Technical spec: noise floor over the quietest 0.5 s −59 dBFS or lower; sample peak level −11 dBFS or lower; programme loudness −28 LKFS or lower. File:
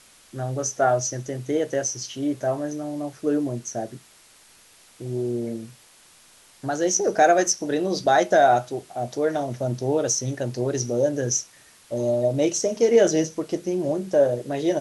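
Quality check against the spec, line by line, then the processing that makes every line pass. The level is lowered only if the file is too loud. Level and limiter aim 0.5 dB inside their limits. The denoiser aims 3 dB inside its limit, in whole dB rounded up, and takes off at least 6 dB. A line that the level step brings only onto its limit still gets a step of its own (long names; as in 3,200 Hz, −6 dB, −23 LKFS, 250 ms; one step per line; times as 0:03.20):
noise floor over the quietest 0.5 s −53 dBFS: out of spec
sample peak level −6.5 dBFS: out of spec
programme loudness −23.5 LKFS: out of spec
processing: broadband denoise 6 dB, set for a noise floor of −53 dBFS
level −5 dB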